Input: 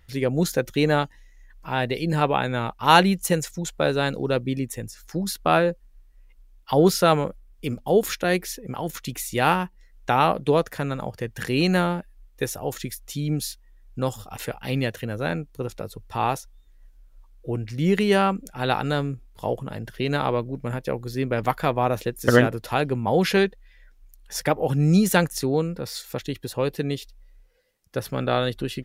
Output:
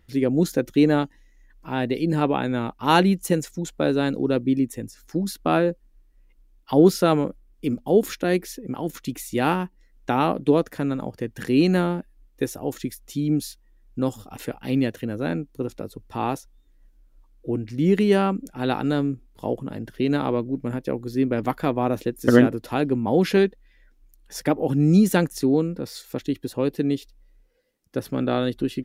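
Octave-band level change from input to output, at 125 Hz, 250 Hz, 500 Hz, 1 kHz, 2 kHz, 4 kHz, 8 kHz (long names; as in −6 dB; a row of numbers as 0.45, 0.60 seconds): −1.0, +4.5, +0.5, −3.5, −4.0, −4.5, −4.5 decibels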